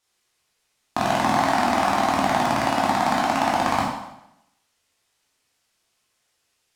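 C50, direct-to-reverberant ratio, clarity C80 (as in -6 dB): 1.0 dB, -5.0 dB, 4.0 dB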